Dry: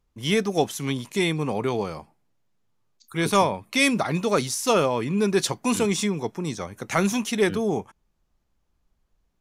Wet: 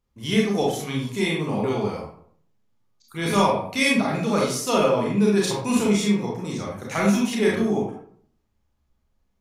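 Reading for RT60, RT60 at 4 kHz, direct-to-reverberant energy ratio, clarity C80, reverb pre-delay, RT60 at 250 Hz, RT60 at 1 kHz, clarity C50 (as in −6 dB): 0.60 s, 0.35 s, −4.0 dB, 6.0 dB, 27 ms, 0.65 s, 0.55 s, 1.5 dB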